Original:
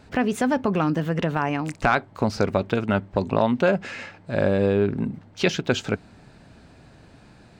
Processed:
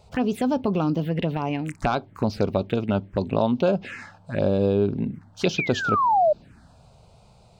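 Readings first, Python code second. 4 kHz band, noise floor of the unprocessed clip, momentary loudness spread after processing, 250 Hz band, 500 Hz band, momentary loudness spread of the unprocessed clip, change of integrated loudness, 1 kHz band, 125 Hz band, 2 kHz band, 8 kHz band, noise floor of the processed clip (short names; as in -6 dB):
-2.0 dB, -51 dBFS, 8 LU, -0.5 dB, -0.5 dB, 9 LU, -0.5 dB, +2.5 dB, 0.0 dB, -4.0 dB, n/a, -54 dBFS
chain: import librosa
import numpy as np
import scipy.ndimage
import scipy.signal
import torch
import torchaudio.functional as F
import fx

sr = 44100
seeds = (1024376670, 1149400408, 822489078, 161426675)

y = fx.spec_paint(x, sr, seeds[0], shape='fall', start_s=5.58, length_s=0.75, low_hz=580.0, high_hz=2500.0, level_db=-16.0)
y = fx.env_phaser(y, sr, low_hz=270.0, high_hz=1900.0, full_db=-18.5)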